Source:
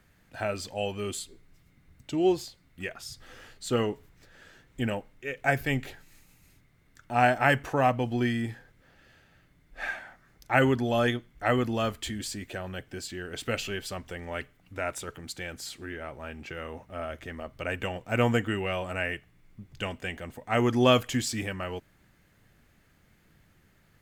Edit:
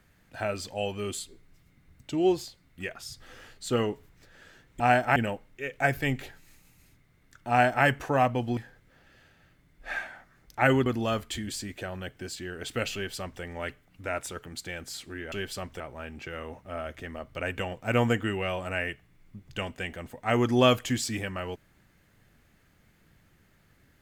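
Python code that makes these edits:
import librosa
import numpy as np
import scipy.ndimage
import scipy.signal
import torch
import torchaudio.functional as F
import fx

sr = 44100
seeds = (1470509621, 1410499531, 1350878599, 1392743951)

y = fx.edit(x, sr, fx.duplicate(start_s=7.13, length_s=0.36, to_s=4.8),
    fx.cut(start_s=8.21, length_s=0.28),
    fx.cut(start_s=10.78, length_s=0.8),
    fx.duplicate(start_s=13.66, length_s=0.48, to_s=16.04), tone=tone)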